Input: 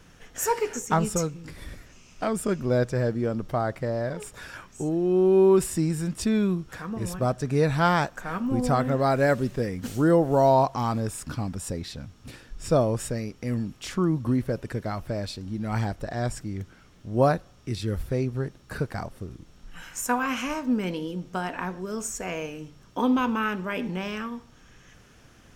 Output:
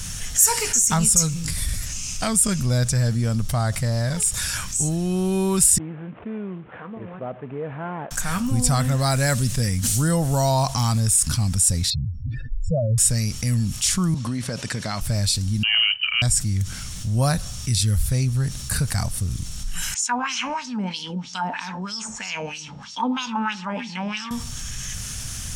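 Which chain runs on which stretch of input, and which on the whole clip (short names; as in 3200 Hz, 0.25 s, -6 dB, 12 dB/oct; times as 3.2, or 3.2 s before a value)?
5.78–8.11 CVSD 16 kbps + ladder band-pass 500 Hz, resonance 35%
11.9–12.98 spectral contrast raised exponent 3.7 + LPF 10000 Hz
14.14–15.01 BPF 230–5600 Hz + compressor 3:1, threshold -30 dBFS
15.63–16.22 expander -32 dBFS + upward compressor, threshold -31 dBFS + inverted band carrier 3000 Hz
19.94–24.31 LFO band-pass sine 3.1 Hz 510–5500 Hz + air absorption 97 m + small resonant body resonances 210/860 Hz, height 14 dB, ringing for 30 ms
whole clip: EQ curve 100 Hz 0 dB, 230 Hz -10 dB, 350 Hz -22 dB, 690 Hz -14 dB, 1500 Hz -10 dB, 2800 Hz -4 dB, 9700 Hz +13 dB, 14000 Hz +3 dB; fast leveller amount 50%; gain +5 dB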